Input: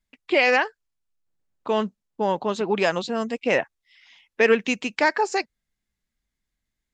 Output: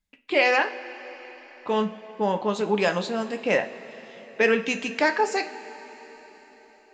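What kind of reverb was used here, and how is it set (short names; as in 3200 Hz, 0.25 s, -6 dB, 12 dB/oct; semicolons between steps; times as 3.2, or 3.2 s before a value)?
two-slope reverb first 0.31 s, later 4.8 s, from -18 dB, DRR 6 dB; gain -2 dB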